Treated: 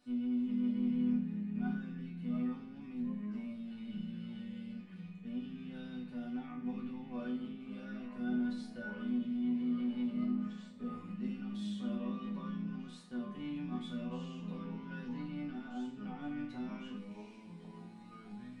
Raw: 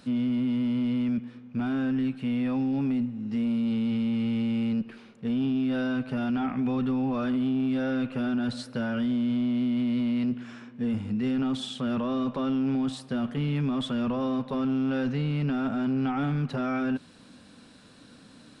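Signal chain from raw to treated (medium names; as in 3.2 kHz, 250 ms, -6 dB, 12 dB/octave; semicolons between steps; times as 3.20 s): chord resonator B3 minor, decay 0.45 s; ever faster or slower copies 380 ms, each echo -3 st, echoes 2, each echo -6 dB; trim +4.5 dB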